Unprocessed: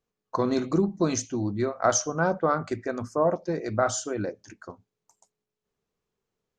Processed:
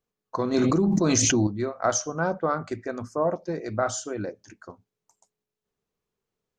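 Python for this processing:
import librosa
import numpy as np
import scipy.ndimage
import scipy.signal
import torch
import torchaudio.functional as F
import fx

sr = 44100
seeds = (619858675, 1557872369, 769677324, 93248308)

y = fx.env_flatten(x, sr, amount_pct=100, at=(0.54, 1.47))
y = y * librosa.db_to_amplitude(-1.5)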